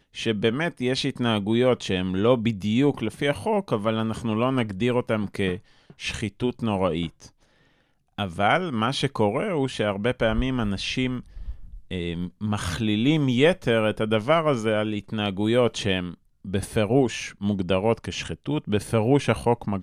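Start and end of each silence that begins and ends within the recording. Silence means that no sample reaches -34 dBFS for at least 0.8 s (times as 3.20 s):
7.26–8.18 s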